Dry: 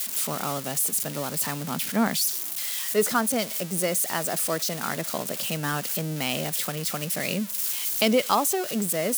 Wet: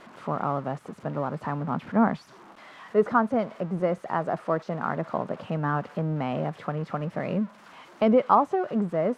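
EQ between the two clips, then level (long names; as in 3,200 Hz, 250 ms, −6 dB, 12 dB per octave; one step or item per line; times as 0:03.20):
low-pass with resonance 1,100 Hz, resonance Q 1.6
low-shelf EQ 97 Hz +9.5 dB
0.0 dB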